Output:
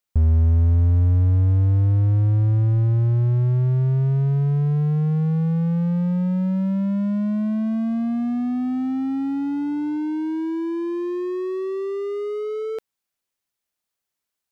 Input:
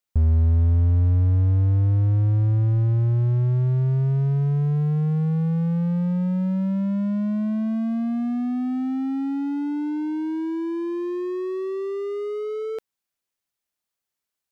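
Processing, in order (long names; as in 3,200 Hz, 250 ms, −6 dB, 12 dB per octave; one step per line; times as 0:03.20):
0:07.71–0:09.96: hum with harmonics 100 Hz, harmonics 12, −56 dBFS −4 dB per octave
level +1.5 dB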